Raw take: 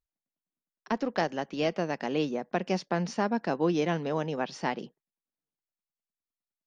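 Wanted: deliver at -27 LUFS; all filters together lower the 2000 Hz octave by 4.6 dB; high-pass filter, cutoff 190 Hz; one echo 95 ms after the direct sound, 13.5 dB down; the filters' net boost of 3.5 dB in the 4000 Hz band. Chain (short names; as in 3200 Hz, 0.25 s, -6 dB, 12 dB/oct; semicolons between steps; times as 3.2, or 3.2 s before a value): HPF 190 Hz; bell 2000 Hz -8 dB; bell 4000 Hz +8 dB; echo 95 ms -13.5 dB; gain +4.5 dB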